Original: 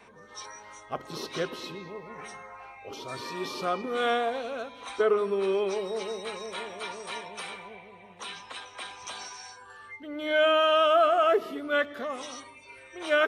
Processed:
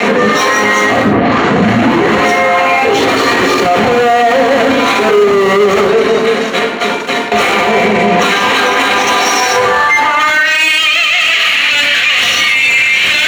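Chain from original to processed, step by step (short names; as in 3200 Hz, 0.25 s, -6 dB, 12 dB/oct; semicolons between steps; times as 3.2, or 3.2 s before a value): 5.84–7.32 gate -28 dBFS, range -20 dB; dynamic EQ 3500 Hz, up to -5 dB, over -44 dBFS, Q 1.6; fuzz box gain 50 dB, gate -56 dBFS; 1.03 tape start 1.15 s; high-pass sweep 250 Hz -> 2600 Hz, 9.27–10.66; sine folder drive 10 dB, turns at -1.5 dBFS; reverb RT60 0.90 s, pre-delay 3 ms, DRR -0.5 dB; maximiser -9.5 dB; gain -1 dB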